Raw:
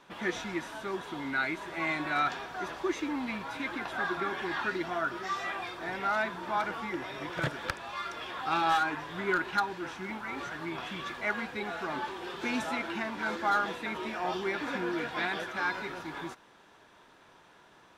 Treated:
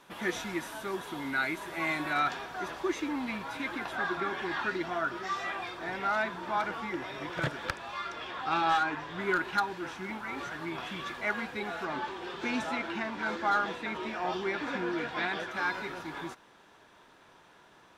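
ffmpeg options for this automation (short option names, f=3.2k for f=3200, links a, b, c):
-af "asetnsamples=n=441:p=0,asendcmd='2.13 equalizer g 3.5;3.95 equalizer g -3;7.97 equalizer g -10.5;9.2 equalizer g 1.5;11.85 equalizer g -8.5;15.51 equalizer g 1',equalizer=f=12k:t=o:w=0.84:g=12"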